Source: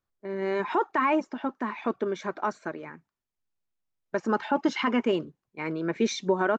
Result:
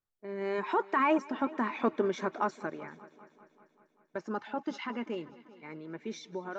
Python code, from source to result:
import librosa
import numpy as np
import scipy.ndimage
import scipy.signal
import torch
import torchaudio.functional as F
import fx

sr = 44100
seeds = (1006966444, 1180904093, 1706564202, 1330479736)

y = fx.doppler_pass(x, sr, speed_mps=8, closest_m=7.0, pass_at_s=1.78)
y = fx.echo_heads(y, sr, ms=195, heads='first and second', feedback_pct=55, wet_db=-22.5)